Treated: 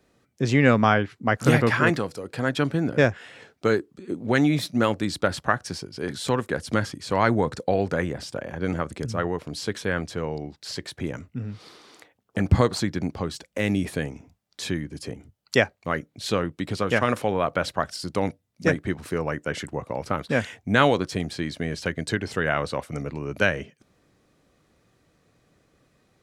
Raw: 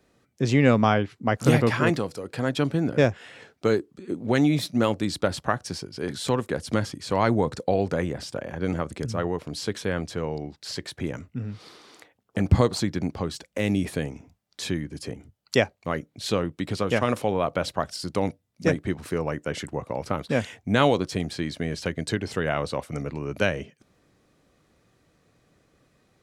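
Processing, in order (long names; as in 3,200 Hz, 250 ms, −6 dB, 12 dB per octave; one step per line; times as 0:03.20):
dynamic equaliser 1,600 Hz, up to +6 dB, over −40 dBFS, Q 1.6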